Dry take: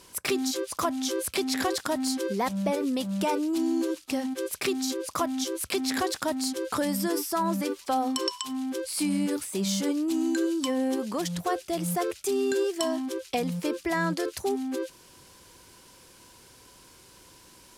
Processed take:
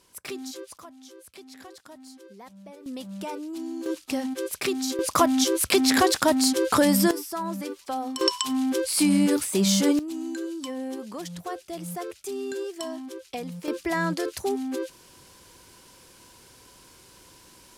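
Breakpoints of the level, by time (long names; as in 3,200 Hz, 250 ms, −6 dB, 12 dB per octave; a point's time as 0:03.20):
−8.5 dB
from 0:00.78 −18.5 dB
from 0:02.86 −7.5 dB
from 0:03.86 +1 dB
from 0:04.99 +8 dB
from 0:07.11 −4 dB
from 0:08.21 +6.5 dB
from 0:09.99 −6 dB
from 0:13.68 +1 dB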